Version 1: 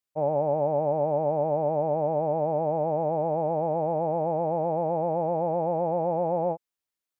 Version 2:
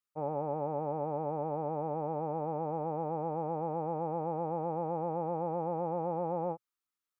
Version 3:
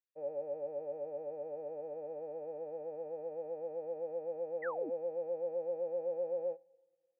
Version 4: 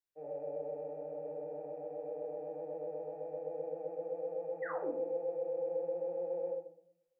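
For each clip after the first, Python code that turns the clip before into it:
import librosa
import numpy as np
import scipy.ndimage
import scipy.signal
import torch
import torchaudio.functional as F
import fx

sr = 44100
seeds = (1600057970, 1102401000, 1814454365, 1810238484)

y1 = fx.graphic_eq_31(x, sr, hz=(125, 630, 1250), db=(-7, -11, 11))
y1 = F.gain(torch.from_numpy(y1), -5.0).numpy()
y2 = fx.vowel_filter(y1, sr, vowel='e')
y2 = fx.rev_double_slope(y2, sr, seeds[0], early_s=0.34, late_s=1.7, knee_db=-18, drr_db=15.5)
y2 = fx.spec_paint(y2, sr, seeds[1], shape='fall', start_s=4.62, length_s=0.28, low_hz=250.0, high_hz=2100.0, level_db=-44.0)
y2 = F.gain(torch.from_numpy(y2), 2.0).numpy()
y3 = fx.room_shoebox(y2, sr, seeds[2], volume_m3=690.0, walls='furnished', distance_m=3.5)
y3 = F.gain(torch.from_numpy(y3), -4.5).numpy()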